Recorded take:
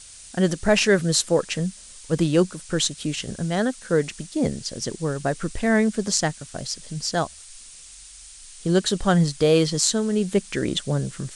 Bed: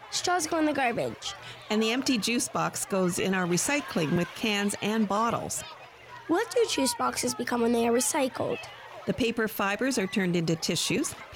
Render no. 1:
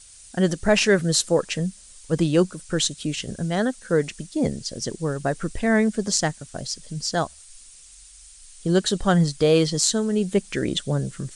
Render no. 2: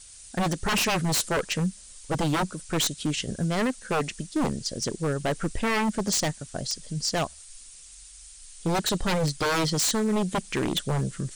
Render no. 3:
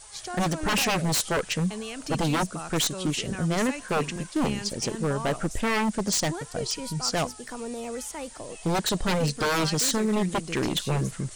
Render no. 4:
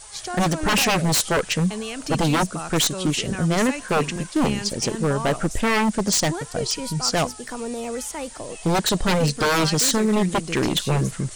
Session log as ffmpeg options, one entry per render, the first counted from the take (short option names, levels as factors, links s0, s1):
-af "afftdn=nr=6:nf=-44"
-af "aeval=exprs='0.112*(abs(mod(val(0)/0.112+3,4)-2)-1)':c=same"
-filter_complex "[1:a]volume=0.316[s0];[0:a][s0]amix=inputs=2:normalize=0"
-af "volume=1.78"